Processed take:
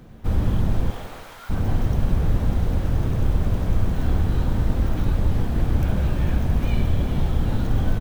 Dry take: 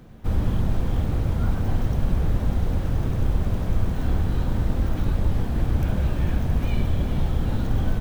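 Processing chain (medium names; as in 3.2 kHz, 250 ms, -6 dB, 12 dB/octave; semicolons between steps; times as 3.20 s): 0.90–1.49 s: high-pass 440 Hz -> 1.4 kHz 12 dB/octave; feedback delay 164 ms, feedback 45%, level -16 dB; trim +1.5 dB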